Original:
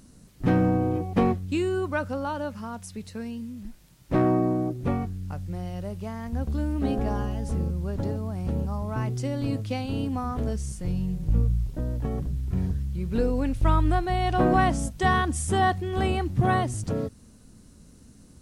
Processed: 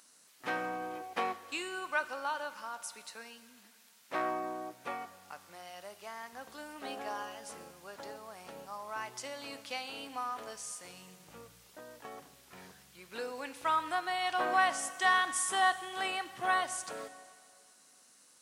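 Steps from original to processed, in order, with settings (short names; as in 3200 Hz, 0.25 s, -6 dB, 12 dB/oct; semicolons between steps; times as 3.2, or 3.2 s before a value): HPF 1000 Hz 12 dB/oct; reverb RT60 2.3 s, pre-delay 14 ms, DRR 12.5 dB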